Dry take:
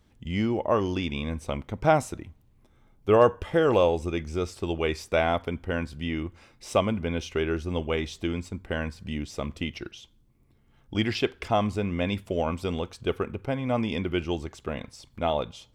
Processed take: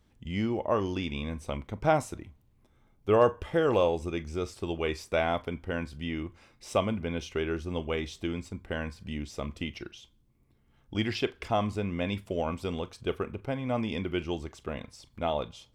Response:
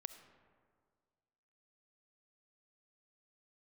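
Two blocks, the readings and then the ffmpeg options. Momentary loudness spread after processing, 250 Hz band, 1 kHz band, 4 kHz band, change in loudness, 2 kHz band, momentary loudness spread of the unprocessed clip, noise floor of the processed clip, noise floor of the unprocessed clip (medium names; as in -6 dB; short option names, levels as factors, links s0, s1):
11 LU, -3.5 dB, -3.5 dB, -3.5 dB, -3.5 dB, -3.5 dB, 12 LU, -66 dBFS, -62 dBFS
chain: -filter_complex "[1:a]atrim=start_sample=2205,atrim=end_sample=3528,asetrate=74970,aresample=44100[s0];[0:a][s0]afir=irnorm=-1:irlink=0,volume=2"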